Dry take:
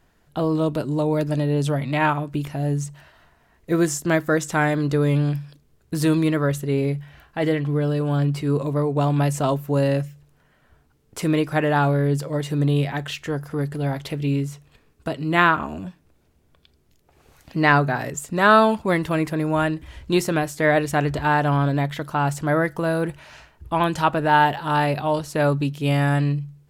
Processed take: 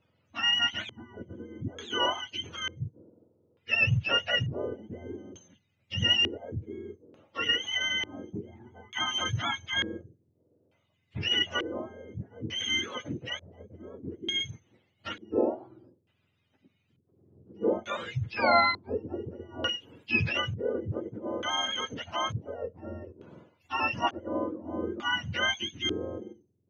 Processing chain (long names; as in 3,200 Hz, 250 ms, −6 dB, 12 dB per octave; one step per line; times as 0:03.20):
frequency axis turned over on the octave scale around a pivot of 950 Hz
auto-filter low-pass square 0.56 Hz 390–2,900 Hz
0:07.54–0:08.41: multiband upward and downward compressor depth 70%
level −8 dB